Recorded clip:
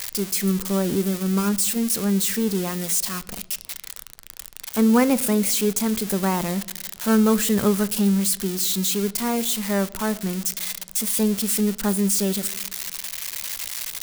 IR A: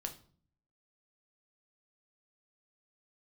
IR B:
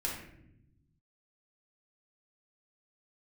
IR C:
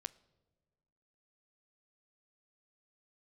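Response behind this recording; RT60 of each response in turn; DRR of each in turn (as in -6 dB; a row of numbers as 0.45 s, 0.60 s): C; 0.50 s, 0.80 s, no single decay rate; 4.0 dB, -4.0 dB, 15.5 dB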